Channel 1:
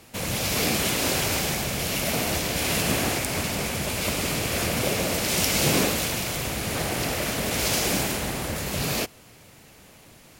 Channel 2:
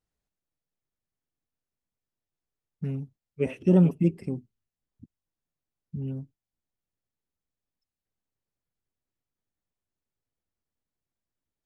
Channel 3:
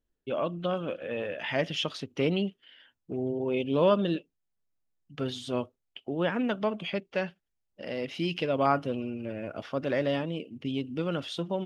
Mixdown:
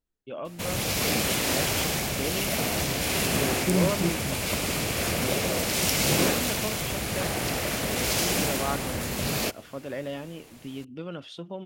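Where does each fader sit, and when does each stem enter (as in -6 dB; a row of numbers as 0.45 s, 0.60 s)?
-1.5 dB, -6.0 dB, -6.0 dB; 0.45 s, 0.00 s, 0.00 s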